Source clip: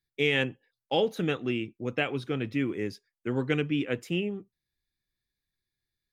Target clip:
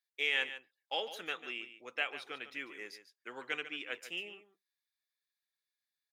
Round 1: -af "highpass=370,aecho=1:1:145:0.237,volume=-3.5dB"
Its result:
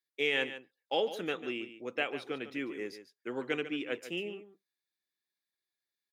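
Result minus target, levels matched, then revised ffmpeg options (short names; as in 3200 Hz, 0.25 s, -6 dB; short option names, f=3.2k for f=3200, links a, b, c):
500 Hz band +8.0 dB
-af "highpass=920,aecho=1:1:145:0.237,volume=-3.5dB"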